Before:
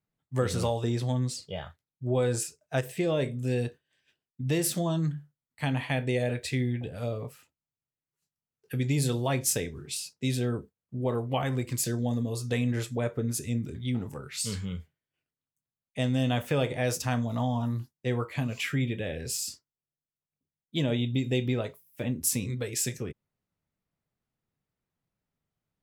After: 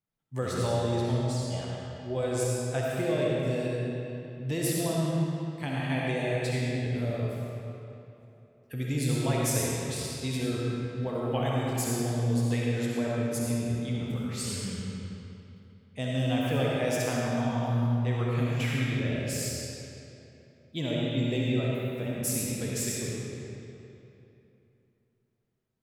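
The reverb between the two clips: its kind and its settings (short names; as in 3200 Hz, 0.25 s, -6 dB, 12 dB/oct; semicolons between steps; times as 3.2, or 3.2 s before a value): digital reverb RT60 3 s, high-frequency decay 0.75×, pre-delay 25 ms, DRR -4.5 dB; gain -5 dB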